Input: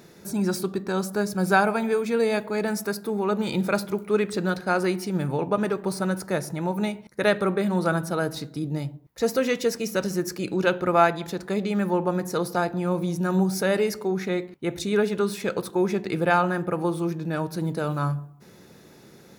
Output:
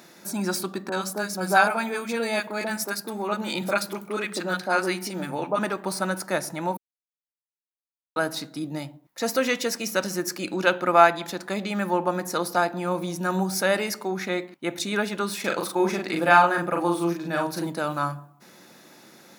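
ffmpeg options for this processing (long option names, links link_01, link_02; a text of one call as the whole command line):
ffmpeg -i in.wav -filter_complex "[0:a]asettb=1/sr,asplit=3[link_01][link_02][link_03];[link_01]atrim=end=0.894[link_04];[link_02]atrim=start=0.89:end=5.59,asetpts=PTS-STARTPTS,afade=type=in:duration=0.004:curve=qsin,afade=type=out:start_time=4.696:duration=0.004:curve=qsin,acrossover=split=170|990[link_05][link_06][link_07];[link_07]adelay=30[link_08];[link_05]adelay=70[link_09];[link_09][link_06][link_08]amix=inputs=3:normalize=0,atrim=end_sample=207270[link_10];[link_03]atrim=start=5.586[link_11];[link_04][link_10]acrossfade=duration=0.004:curve1=hsin:curve2=qsin[link_12];[link_12][link_11]acrossfade=duration=0.004:curve1=qsin:curve2=hsin,asettb=1/sr,asplit=3[link_13][link_14][link_15];[link_13]atrim=end=15.404[link_16];[link_14]atrim=start=15.4:end=17.67,asetpts=PTS-STARTPTS,afade=type=in:duration=0.004:curve=qsin,afade=type=out:start_time=2.266:duration=0.004:curve=qsin,asplit=2[link_17][link_18];[link_18]adelay=41,volume=-3dB[link_19];[link_17][link_19]amix=inputs=2:normalize=0,atrim=end_sample=100107[link_20];[link_15]atrim=start=17.666[link_21];[link_16][link_20]acrossfade=duration=0.004:curve1=hsin:curve2=qsin[link_22];[link_22][link_21]acrossfade=duration=0.004:curve1=qsin:curve2=hsin,asplit=3[link_23][link_24][link_25];[link_23]atrim=end=6.77,asetpts=PTS-STARTPTS,afade=type=out:start_time=6.766:duration=0.004:curve=hsin[link_26];[link_24]atrim=start=6.77:end=8.16,asetpts=PTS-STARTPTS,volume=0[link_27];[link_25]atrim=start=8.16,asetpts=PTS-STARTPTS,afade=type=in:duration=0.004:curve=hsin[link_28];[link_26][link_27][link_28]concat=n=3:v=0:a=1,highpass=290,equalizer=frequency=430:width_type=o:width=0.39:gain=-12,volume=4dB" out.wav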